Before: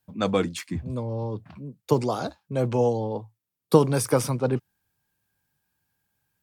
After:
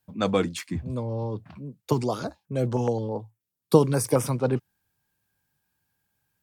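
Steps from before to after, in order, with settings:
0:01.92–0:04.27: notch on a step sequencer 9.4 Hz 560–4,300 Hz

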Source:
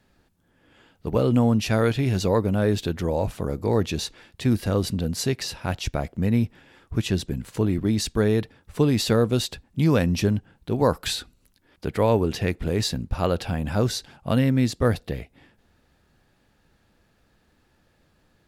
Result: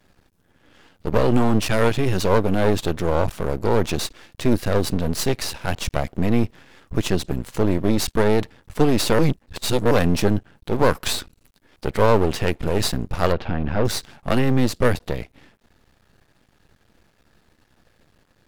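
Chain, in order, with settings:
half-wave rectification
0:09.19–0:09.91: reverse
0:13.32–0:13.85: high-frequency loss of the air 290 metres
level +7.5 dB

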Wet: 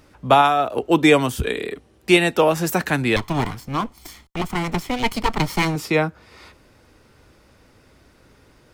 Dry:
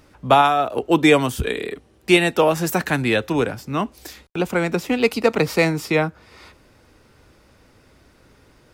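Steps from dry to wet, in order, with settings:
0:03.16–0:05.76: lower of the sound and its delayed copy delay 0.93 ms

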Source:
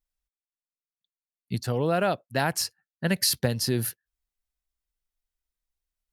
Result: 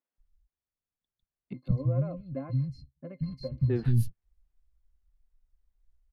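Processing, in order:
gain on one half-wave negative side −3 dB
RIAA equalisation playback
downward compressor 2 to 1, threshold −26 dBFS, peak gain reduction 8 dB
0:01.53–0:03.70: resonances in every octave C, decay 0.1 s
three-band delay without the direct sound mids, highs, lows 150/180 ms, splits 240/3,200 Hz
level +3 dB

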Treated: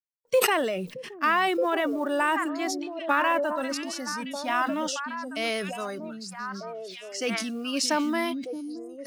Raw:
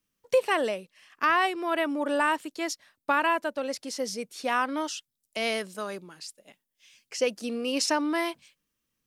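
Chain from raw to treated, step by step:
noise gate with hold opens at −48 dBFS
noise reduction from a noise print of the clip's start 14 dB
floating-point word with a short mantissa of 4 bits
on a send: echo through a band-pass that steps 622 ms, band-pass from 190 Hz, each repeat 1.4 octaves, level −2 dB
on the sum: level that may fall only so fast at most 33 dB per second

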